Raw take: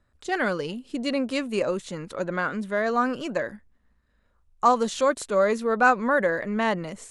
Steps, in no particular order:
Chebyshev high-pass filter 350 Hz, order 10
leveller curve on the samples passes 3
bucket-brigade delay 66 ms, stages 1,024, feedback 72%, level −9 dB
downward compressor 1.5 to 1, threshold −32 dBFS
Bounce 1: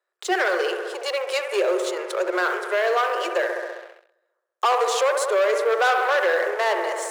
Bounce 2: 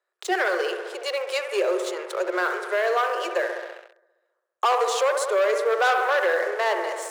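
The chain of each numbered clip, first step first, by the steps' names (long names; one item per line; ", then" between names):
bucket-brigade delay, then downward compressor, then leveller curve on the samples, then Chebyshev high-pass filter
bucket-brigade delay, then leveller curve on the samples, then downward compressor, then Chebyshev high-pass filter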